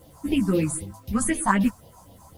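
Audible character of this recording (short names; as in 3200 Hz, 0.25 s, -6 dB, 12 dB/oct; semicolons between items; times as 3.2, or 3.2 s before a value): phasing stages 4, 3.9 Hz, lowest notch 410–1400 Hz; a quantiser's noise floor 10-bit, dither none; a shimmering, thickened sound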